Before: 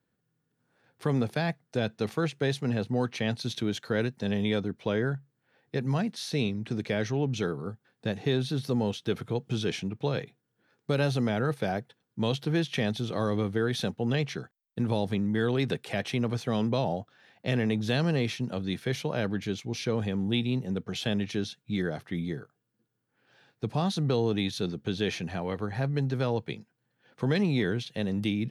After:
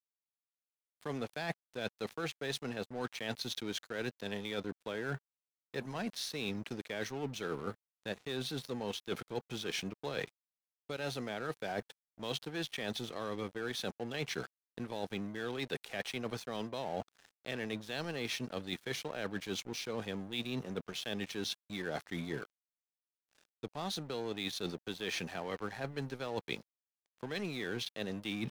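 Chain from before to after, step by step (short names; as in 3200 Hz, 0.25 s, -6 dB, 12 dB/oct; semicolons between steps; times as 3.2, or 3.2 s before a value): HPF 560 Hz 6 dB/oct; reverse; compressor 16:1, threshold -42 dBFS, peak gain reduction 17.5 dB; reverse; crossover distortion -56.5 dBFS; gain +9 dB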